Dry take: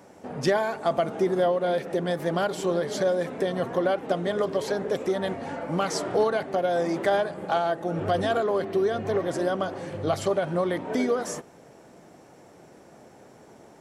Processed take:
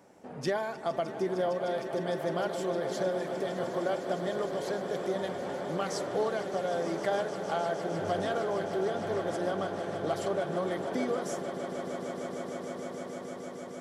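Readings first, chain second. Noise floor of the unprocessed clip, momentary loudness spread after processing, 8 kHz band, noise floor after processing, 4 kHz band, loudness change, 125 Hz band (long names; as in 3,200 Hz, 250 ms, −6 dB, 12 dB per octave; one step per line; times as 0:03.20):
−52 dBFS, 7 LU, −5.5 dB, −42 dBFS, −5.5 dB, −6.5 dB, −6.5 dB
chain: parametric band 74 Hz −12.5 dB 0.35 octaves
on a send: echo that builds up and dies away 153 ms, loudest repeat 8, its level −14 dB
on the sum: level −7.5 dB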